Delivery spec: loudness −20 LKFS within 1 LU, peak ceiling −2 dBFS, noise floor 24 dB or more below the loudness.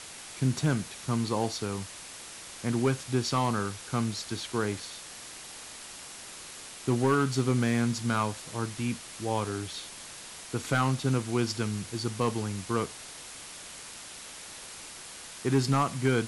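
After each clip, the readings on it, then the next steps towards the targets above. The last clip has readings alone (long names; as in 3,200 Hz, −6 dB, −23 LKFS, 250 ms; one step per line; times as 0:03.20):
share of clipped samples 0.3%; peaks flattened at −17.0 dBFS; background noise floor −45 dBFS; target noise floor −54 dBFS; integrated loudness −30.0 LKFS; sample peak −17.0 dBFS; target loudness −20.0 LKFS
→ clipped peaks rebuilt −17 dBFS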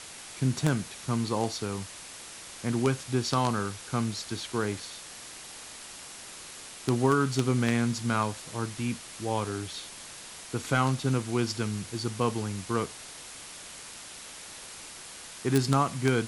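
share of clipped samples 0.0%; background noise floor −45 dBFS; target noise floor −54 dBFS
→ broadband denoise 9 dB, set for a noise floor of −45 dBFS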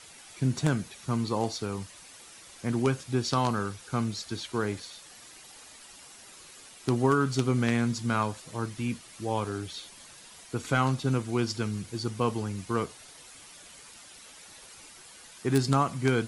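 background noise floor −51 dBFS; target noise floor −54 dBFS
→ broadband denoise 6 dB, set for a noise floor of −51 dBFS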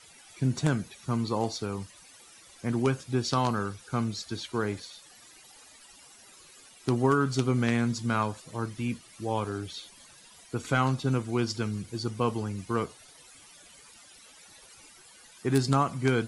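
background noise floor −54 dBFS; integrated loudness −29.5 LKFS; sample peak −8.0 dBFS; target loudness −20.0 LKFS
→ level +9.5 dB
brickwall limiter −2 dBFS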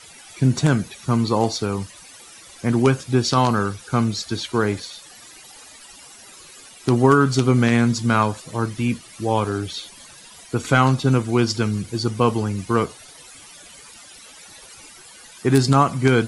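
integrated loudness −20.5 LKFS; sample peak −2.0 dBFS; background noise floor −45 dBFS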